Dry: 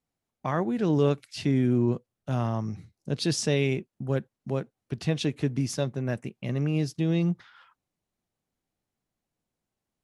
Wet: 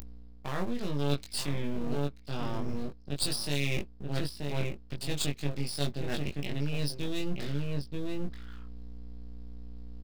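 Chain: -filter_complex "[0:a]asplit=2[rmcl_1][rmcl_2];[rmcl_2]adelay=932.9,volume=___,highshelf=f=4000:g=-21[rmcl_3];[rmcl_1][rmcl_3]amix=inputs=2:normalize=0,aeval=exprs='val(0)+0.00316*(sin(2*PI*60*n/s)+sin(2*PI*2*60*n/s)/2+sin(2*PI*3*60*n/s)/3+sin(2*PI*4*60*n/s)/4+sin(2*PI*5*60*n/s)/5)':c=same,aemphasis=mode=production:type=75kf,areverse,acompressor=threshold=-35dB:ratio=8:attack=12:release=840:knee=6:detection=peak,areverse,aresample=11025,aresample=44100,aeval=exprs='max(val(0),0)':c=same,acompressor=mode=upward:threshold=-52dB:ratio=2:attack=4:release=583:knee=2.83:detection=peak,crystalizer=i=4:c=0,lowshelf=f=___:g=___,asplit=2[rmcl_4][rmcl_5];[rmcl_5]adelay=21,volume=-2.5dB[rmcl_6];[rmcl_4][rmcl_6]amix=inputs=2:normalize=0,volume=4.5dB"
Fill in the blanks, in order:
-8dB, 150, 7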